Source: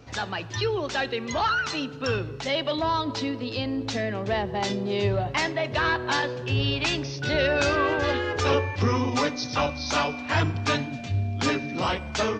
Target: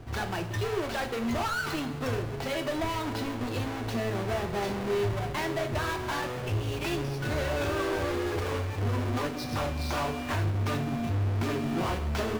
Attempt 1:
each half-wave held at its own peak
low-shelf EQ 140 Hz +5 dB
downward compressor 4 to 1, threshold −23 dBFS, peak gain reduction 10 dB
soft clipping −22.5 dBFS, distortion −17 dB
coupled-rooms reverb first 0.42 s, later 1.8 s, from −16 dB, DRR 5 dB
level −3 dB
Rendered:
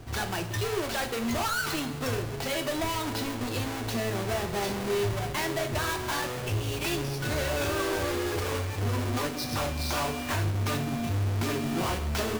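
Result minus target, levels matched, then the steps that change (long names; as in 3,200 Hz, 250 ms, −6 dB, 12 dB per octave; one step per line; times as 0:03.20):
8,000 Hz band +6.5 dB
add after downward compressor: high-shelf EQ 3,900 Hz −9.5 dB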